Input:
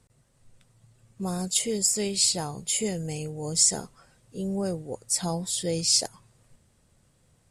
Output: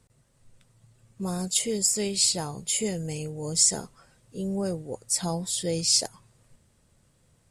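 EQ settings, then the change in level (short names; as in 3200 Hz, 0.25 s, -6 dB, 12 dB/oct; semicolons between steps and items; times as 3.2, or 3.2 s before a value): notch 750 Hz, Q 24; 0.0 dB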